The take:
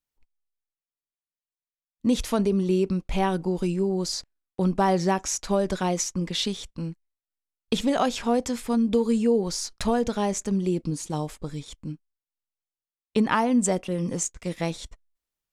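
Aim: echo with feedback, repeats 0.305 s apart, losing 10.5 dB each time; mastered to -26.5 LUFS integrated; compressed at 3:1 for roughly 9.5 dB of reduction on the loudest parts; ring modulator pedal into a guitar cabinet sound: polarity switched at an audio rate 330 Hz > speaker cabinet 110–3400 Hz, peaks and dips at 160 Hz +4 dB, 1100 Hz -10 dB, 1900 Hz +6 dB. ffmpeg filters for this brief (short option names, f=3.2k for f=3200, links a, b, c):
-af "acompressor=threshold=-30dB:ratio=3,aecho=1:1:305|610|915:0.299|0.0896|0.0269,aeval=exprs='val(0)*sgn(sin(2*PI*330*n/s))':c=same,highpass=110,equalizer=f=160:t=q:w=4:g=4,equalizer=f=1.1k:t=q:w=4:g=-10,equalizer=f=1.9k:t=q:w=4:g=6,lowpass=f=3.4k:w=0.5412,lowpass=f=3.4k:w=1.3066,volume=7dB"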